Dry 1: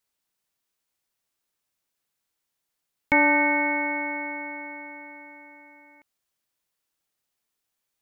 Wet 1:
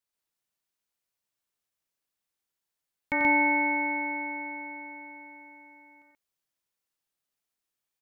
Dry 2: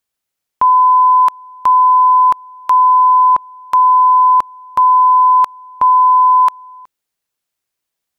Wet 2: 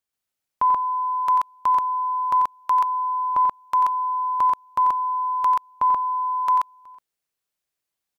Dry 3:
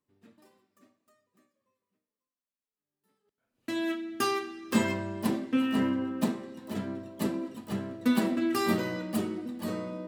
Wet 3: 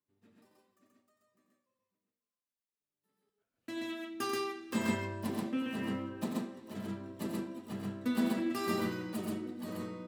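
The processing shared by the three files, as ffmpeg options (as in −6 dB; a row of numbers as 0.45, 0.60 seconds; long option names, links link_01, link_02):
-af "aecho=1:1:90.38|131.2:0.398|0.891,aeval=exprs='0.596*(cos(1*acos(clip(val(0)/0.596,-1,1)))-cos(1*PI/2))+0.00335*(cos(2*acos(clip(val(0)/0.596,-1,1)))-cos(2*PI/2))':channel_layout=same,volume=-8.5dB"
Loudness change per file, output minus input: −3.5, −11.5, −6.0 LU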